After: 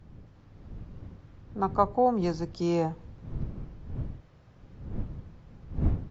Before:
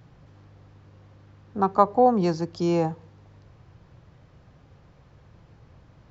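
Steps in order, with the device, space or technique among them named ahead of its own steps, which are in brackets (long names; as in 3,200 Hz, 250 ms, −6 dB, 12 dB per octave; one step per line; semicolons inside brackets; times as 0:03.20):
smartphone video outdoors (wind on the microphone 120 Hz −33 dBFS; automatic gain control gain up to 3 dB; level −6.5 dB; AAC 48 kbit/s 32,000 Hz)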